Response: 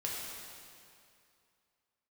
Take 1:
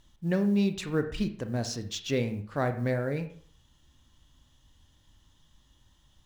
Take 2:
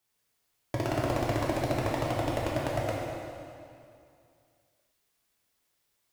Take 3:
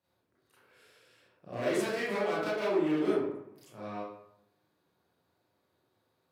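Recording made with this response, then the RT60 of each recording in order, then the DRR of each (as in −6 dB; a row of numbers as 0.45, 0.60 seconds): 2; 0.55, 2.5, 0.75 seconds; 8.0, −4.5, −9.5 decibels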